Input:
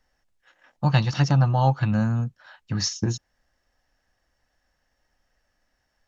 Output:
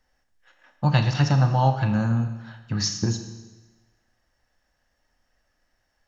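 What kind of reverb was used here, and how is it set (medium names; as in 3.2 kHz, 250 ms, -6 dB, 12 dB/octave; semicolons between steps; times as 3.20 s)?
Schroeder reverb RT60 1.2 s, combs from 27 ms, DRR 7 dB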